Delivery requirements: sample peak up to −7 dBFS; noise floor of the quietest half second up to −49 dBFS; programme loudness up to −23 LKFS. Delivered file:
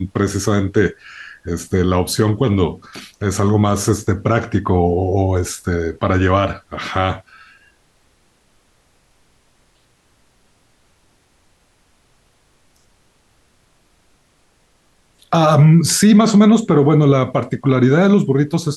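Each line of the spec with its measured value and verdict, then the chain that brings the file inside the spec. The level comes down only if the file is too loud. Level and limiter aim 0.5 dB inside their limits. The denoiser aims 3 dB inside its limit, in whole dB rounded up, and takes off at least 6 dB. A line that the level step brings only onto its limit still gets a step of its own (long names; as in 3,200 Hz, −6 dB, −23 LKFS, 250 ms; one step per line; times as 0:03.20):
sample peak −3.0 dBFS: out of spec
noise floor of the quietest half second −58 dBFS: in spec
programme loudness −15.5 LKFS: out of spec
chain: level −8 dB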